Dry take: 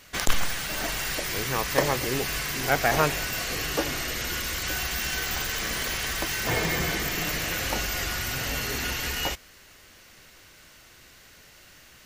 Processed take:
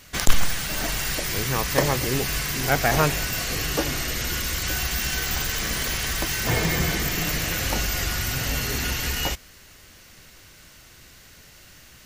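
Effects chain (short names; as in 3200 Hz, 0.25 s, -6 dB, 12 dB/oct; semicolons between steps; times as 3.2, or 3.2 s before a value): tone controls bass +6 dB, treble +3 dB; gain +1 dB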